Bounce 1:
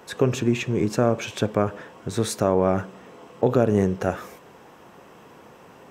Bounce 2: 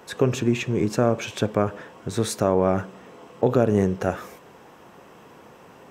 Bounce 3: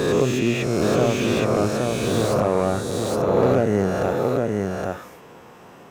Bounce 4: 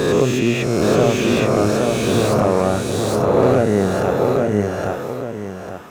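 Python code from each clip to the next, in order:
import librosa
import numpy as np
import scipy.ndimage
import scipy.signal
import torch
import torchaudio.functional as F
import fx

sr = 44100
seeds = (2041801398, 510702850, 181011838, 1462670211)

y1 = x
y2 = fx.spec_swells(y1, sr, rise_s=1.96)
y2 = y2 + 10.0 ** (-3.5 / 20.0) * np.pad(y2, (int(819 * sr / 1000.0), 0))[:len(y2)]
y2 = fx.slew_limit(y2, sr, full_power_hz=180.0)
y2 = F.gain(torch.from_numpy(y2), -2.0).numpy()
y3 = y2 + 10.0 ** (-8.0 / 20.0) * np.pad(y2, (int(848 * sr / 1000.0), 0))[:len(y2)]
y3 = F.gain(torch.from_numpy(y3), 3.5).numpy()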